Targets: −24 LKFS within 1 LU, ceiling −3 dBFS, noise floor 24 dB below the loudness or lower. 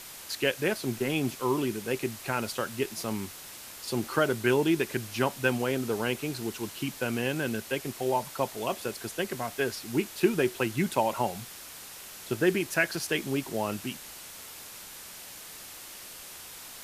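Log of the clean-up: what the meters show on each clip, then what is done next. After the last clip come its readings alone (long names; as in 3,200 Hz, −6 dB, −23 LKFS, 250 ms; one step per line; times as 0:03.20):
background noise floor −45 dBFS; target noise floor −54 dBFS; integrated loudness −30.0 LKFS; sample peak −9.5 dBFS; target loudness −24.0 LKFS
→ noise reduction from a noise print 9 dB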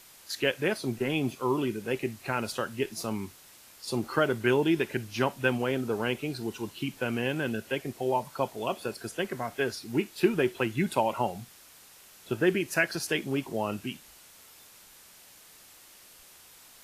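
background noise floor −54 dBFS; integrated loudness −30.0 LKFS; sample peak −10.0 dBFS; target loudness −24.0 LKFS
→ level +6 dB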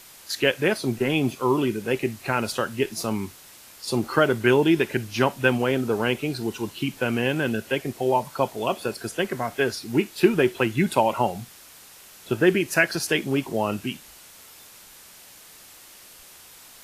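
integrated loudness −24.0 LKFS; sample peak −4.0 dBFS; background noise floor −48 dBFS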